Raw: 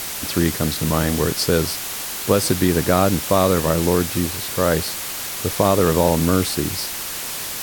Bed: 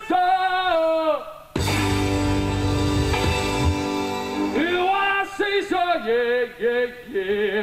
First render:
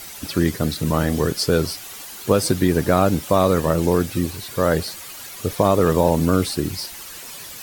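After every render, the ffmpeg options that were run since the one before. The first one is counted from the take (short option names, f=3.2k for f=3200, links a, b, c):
-af "afftdn=nr=11:nf=-29"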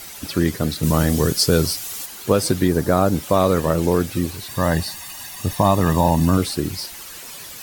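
-filter_complex "[0:a]asettb=1/sr,asplit=3[a][b][c];[a]atrim=end=0.834[d];[b]atrim=start=0.83:end=2.06,asetpts=PTS-STARTPTS,afade=t=in:d=0.004:c=qsin,afade=t=out:st=1.226:d=0.004:c=qsin,bass=f=250:g=4,treble=f=4k:g=7[e];[c]atrim=start=2.056[f];[d][e]acrossfade=d=0.004:c1=hsin:c2=qsin[g];[g][f]acrossfade=d=0.004:c1=qsin:c2=hsin,asettb=1/sr,asplit=3[h][i][j];[h]atrim=end=2.684[k];[i]atrim=start=2.68:end=3.15,asetpts=PTS-STARTPTS,afade=t=in:d=0.004:c=qsin,afade=t=out:st=0.466:d=0.004:c=qsin,equalizer=f=2.6k:t=o:w=0.94:g=-7[l];[j]atrim=start=3.146[m];[k][l]acrossfade=d=0.004:c1=hsin:c2=qsin[n];[n][m]acrossfade=d=0.004:c1=qsin:c2=hsin,asettb=1/sr,asplit=3[o][p][q];[o]atrim=end=4.494[r];[p]atrim=start=4.49:end=6.38,asetpts=PTS-STARTPTS,afade=t=in:d=0.004:c=qsin,afade=t=out:st=1.886:d=0.004:c=qsin,aecho=1:1:1.1:0.65,atrim=end_sample=83349[s];[q]atrim=start=6.376[t];[r][s]acrossfade=d=0.004:c1=hsin:c2=qsin[u];[u][t]acrossfade=d=0.004:c1=qsin:c2=hsin"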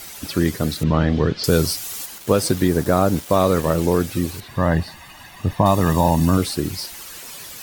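-filter_complex "[0:a]asettb=1/sr,asplit=3[a][b][c];[a]atrim=end=0.834[d];[b]atrim=start=0.83:end=1.44,asetpts=PTS-STARTPTS,afade=t=in:d=0.004:c=qsin,afade=t=out:st=0.606:d=0.004:c=qsin,lowpass=f=3.7k:w=0.5412,lowpass=f=3.7k:w=1.3066[e];[c]atrim=start=1.436[f];[d][e]acrossfade=d=0.004:c1=hsin:c2=qsin[g];[g][f]acrossfade=d=0.004:c1=qsin:c2=hsin,asettb=1/sr,asplit=3[h][i][j];[h]atrim=end=2.184[k];[i]atrim=start=2.18:end=3.83,asetpts=PTS-STARTPTS,afade=t=in:d=0.004:c=qsin,afade=t=out:st=1.646:d=0.004:c=qsin,aeval=exprs='val(0)*gte(abs(val(0)),0.0266)':c=same[l];[j]atrim=start=3.826[m];[k][l]acrossfade=d=0.004:c1=hsin:c2=qsin[n];[n][m]acrossfade=d=0.004:c1=qsin:c2=hsin,asettb=1/sr,asplit=3[o][p][q];[o]atrim=end=4.404[r];[p]atrim=start=4.4:end=5.66,asetpts=PTS-STARTPTS,afade=t=in:d=0.004:c=qsin,afade=t=out:st=1.256:d=0.004:c=qsin,bass=f=250:g=2,treble=f=4k:g=-15[s];[q]atrim=start=5.656[t];[r][s]acrossfade=d=0.004:c1=hsin:c2=qsin[u];[u][t]acrossfade=d=0.004:c1=qsin:c2=hsin"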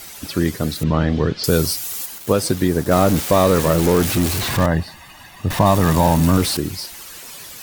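-filter_complex "[0:a]asettb=1/sr,asplit=3[a][b][c];[a]atrim=end=0.754[d];[b]atrim=start=0.75:end=2.33,asetpts=PTS-STARTPTS,afade=t=in:d=0.004:c=qsin,afade=t=out:st=1.576:d=0.004:c=qsin,highshelf=f=11k:g=6[e];[c]atrim=start=2.326[f];[d][e]acrossfade=d=0.004:c1=hsin:c2=qsin[g];[g][f]acrossfade=d=0.004:c1=qsin:c2=hsin,asettb=1/sr,asplit=3[h][i][j];[h]atrim=end=2.914[k];[i]atrim=start=2.91:end=4.66,asetpts=PTS-STARTPTS,afade=t=in:d=0.004:c=qsin,afade=t=out:st=1.746:d=0.004:c=qsin,aeval=exprs='val(0)+0.5*0.133*sgn(val(0))':c=same[l];[j]atrim=start=4.656[m];[k][l]acrossfade=d=0.004:c1=hsin:c2=qsin[n];[n][m]acrossfade=d=0.004:c1=qsin:c2=hsin,asettb=1/sr,asplit=3[o][p][q];[o]atrim=end=5.504[r];[p]atrim=start=5.5:end=6.57,asetpts=PTS-STARTPTS,afade=t=in:d=0.004:c=qsin,afade=t=out:st=1.066:d=0.004:c=qsin,aeval=exprs='val(0)+0.5*0.0944*sgn(val(0))':c=same[s];[q]atrim=start=6.566[t];[r][s]acrossfade=d=0.004:c1=hsin:c2=qsin[u];[u][t]acrossfade=d=0.004:c1=qsin:c2=hsin"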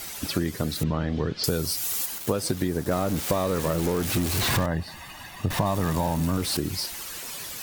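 -af "acompressor=threshold=-22dB:ratio=6"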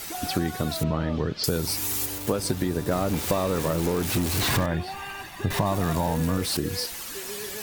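-filter_complex "[1:a]volume=-17dB[a];[0:a][a]amix=inputs=2:normalize=0"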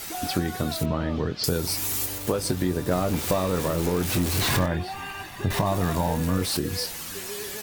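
-filter_complex "[0:a]asplit=2[a][b];[b]adelay=22,volume=-10.5dB[c];[a][c]amix=inputs=2:normalize=0,asplit=2[d][e];[e]adelay=816.3,volume=-24dB,highshelf=f=4k:g=-18.4[f];[d][f]amix=inputs=2:normalize=0"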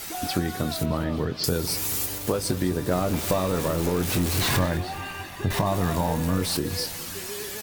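-af "aecho=1:1:207|414|621|828|1035|1242:0.141|0.0833|0.0492|0.029|0.0171|0.0101"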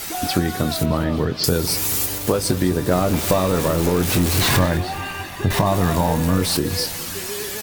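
-af "volume=6dB"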